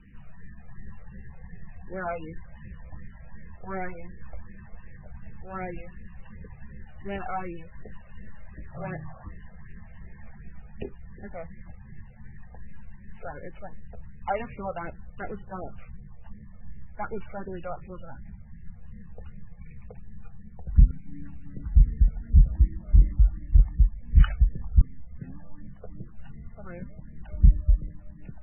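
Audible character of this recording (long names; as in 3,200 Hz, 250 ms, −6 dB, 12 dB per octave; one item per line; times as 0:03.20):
a buzz of ramps at a fixed pitch in blocks of 8 samples
phaser sweep stages 12, 2.7 Hz, lowest notch 290–1,200 Hz
MP3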